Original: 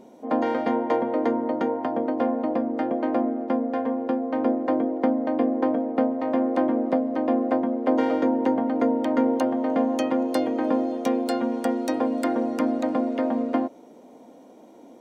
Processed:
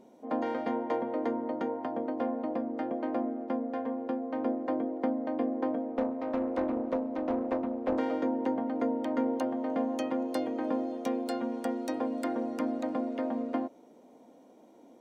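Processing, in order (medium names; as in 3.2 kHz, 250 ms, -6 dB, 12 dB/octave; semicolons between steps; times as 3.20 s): 5.91–7.99 s: loudspeaker Doppler distortion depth 0.36 ms; trim -8 dB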